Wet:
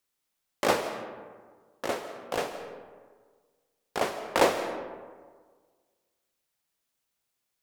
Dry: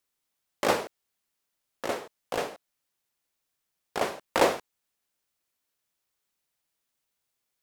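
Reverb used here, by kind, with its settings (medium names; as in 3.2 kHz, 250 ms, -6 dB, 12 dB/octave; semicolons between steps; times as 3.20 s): algorithmic reverb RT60 1.6 s, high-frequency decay 0.45×, pre-delay 115 ms, DRR 9.5 dB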